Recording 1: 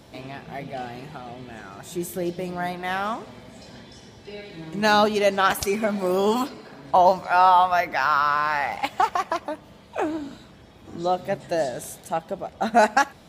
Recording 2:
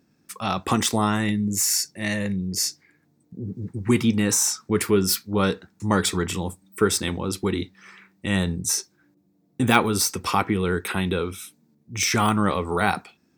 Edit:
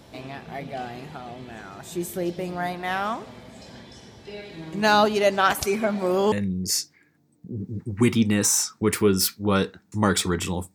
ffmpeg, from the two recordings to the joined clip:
ffmpeg -i cue0.wav -i cue1.wav -filter_complex "[0:a]asettb=1/sr,asplit=3[link_01][link_02][link_03];[link_01]atrim=end=5.824[link_04];[link_02]atrim=start=5.82:end=6.32,asetpts=PTS-STARTPTS,afade=type=in:duration=0.004:curve=qsin,afade=type=out:start_time=0.496:duration=0.004:curve=qsin,highshelf=frequency=8400:gain=-7.5[link_05];[link_03]atrim=start=6.316[link_06];[link_04][link_05]acrossfade=duration=0.004:curve1=hsin:curve2=qsin[link_07];[link_07][link_06]acrossfade=duration=0.004:curve1=qsin:curve2=hsin,apad=whole_dur=10.74,atrim=end=10.74,atrim=end=6.322[link_08];[1:a]atrim=start=2.198:end=6.62[link_09];[link_08][link_09]acrossfade=duration=0.004:curve1=hsin:curve2=hsin" out.wav

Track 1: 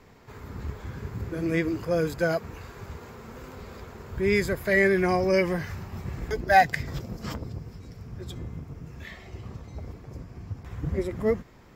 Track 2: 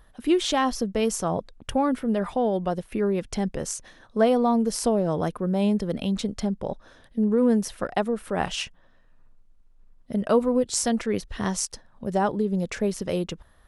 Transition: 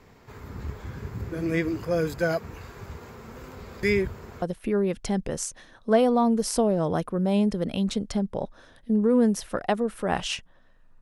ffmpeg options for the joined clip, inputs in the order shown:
ffmpeg -i cue0.wav -i cue1.wav -filter_complex "[0:a]apad=whole_dur=11.01,atrim=end=11.01,asplit=2[link_01][link_02];[link_01]atrim=end=3.832[link_03];[link_02]atrim=start=3.828:end=4.422,asetpts=PTS-STARTPTS,areverse[link_04];[1:a]atrim=start=2.698:end=9.29[link_05];[link_03][link_04]acrossfade=duration=0.004:curve1=hsin:curve2=hsin[link_06];[link_06][link_05]acrossfade=duration=0.004:curve1=hsin:curve2=hsin" out.wav

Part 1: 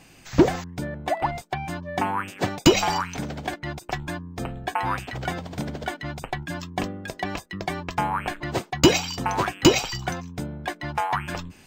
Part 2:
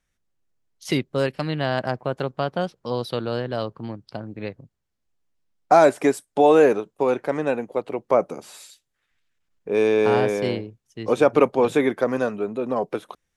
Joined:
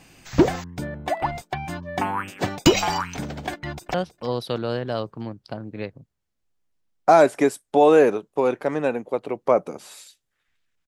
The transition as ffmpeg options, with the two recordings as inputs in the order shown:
ffmpeg -i cue0.wav -i cue1.wav -filter_complex "[0:a]apad=whole_dur=10.87,atrim=end=10.87,atrim=end=3.942[link_01];[1:a]atrim=start=2.568:end=9.5[link_02];[link_01][link_02]acrossfade=duration=0.004:curve1=hsin:curve2=hsin,asplit=2[link_03][link_04];[link_04]afade=type=in:start_time=3.54:duration=0.01,afade=type=out:start_time=3.94:duration=0.01,aecho=0:1:320|640|960|1280:0.141254|0.0706269|0.0353134|0.0176567[link_05];[link_03][link_05]amix=inputs=2:normalize=0" out.wav

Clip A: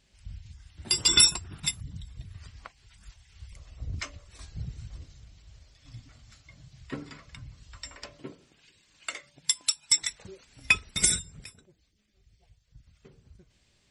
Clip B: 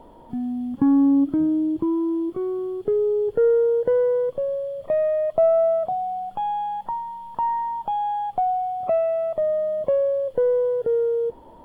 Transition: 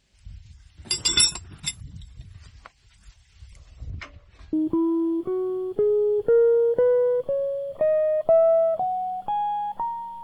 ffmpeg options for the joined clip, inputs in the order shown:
ffmpeg -i cue0.wav -i cue1.wav -filter_complex "[0:a]asettb=1/sr,asplit=3[link_01][link_02][link_03];[link_01]atrim=end=3.904[link_04];[link_02]atrim=start=3.9:end=4.53,asetpts=PTS-STARTPTS,afade=type=in:duration=0.004:curve=qsin,afade=type=out:start_time=0.626:duration=0.004:curve=qsin,lowpass=2900[link_05];[link_03]atrim=start=4.526[link_06];[link_04][link_05]acrossfade=duration=0.004:curve1=hsin:curve2=qsin[link_07];[link_07][link_06]acrossfade=duration=0.004:curve1=qsin:curve2=hsin,apad=whole_dur=10.23,atrim=end=10.23,atrim=end=4.532[link_08];[1:a]atrim=start=1.618:end=7.32[link_09];[link_08][link_09]acrossfade=duration=0.004:curve1=hsin:curve2=hsin" out.wav

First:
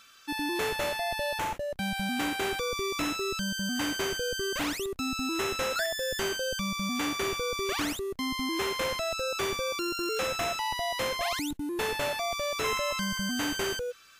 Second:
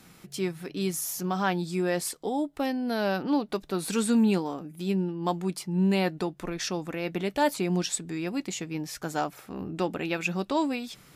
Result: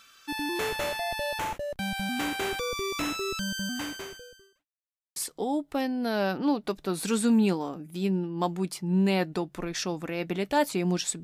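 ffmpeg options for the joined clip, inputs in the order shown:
ffmpeg -i cue0.wav -i cue1.wav -filter_complex "[0:a]apad=whole_dur=11.23,atrim=end=11.23,asplit=2[link_01][link_02];[link_01]atrim=end=4.66,asetpts=PTS-STARTPTS,afade=type=out:start_time=3.62:duration=1.04:curve=qua[link_03];[link_02]atrim=start=4.66:end=5.16,asetpts=PTS-STARTPTS,volume=0[link_04];[1:a]atrim=start=2.01:end=8.08,asetpts=PTS-STARTPTS,afade=type=in:duration=0.004:curve=hsin[link_05];[link_03][link_04][link_05]concat=n=3:v=0:a=1" out.wav

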